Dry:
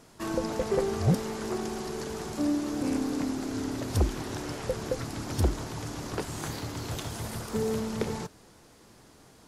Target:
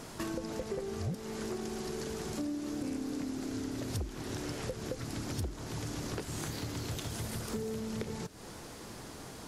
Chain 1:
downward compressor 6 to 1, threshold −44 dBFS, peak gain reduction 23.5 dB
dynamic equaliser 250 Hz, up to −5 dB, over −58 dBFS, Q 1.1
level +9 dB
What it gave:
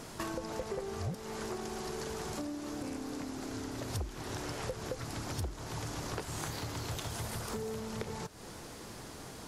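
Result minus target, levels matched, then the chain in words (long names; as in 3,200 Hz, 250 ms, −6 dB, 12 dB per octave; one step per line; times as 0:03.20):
1,000 Hz band +5.0 dB
downward compressor 6 to 1, threshold −44 dBFS, peak gain reduction 23.5 dB
dynamic equaliser 930 Hz, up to −5 dB, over −58 dBFS, Q 1.1
level +9 dB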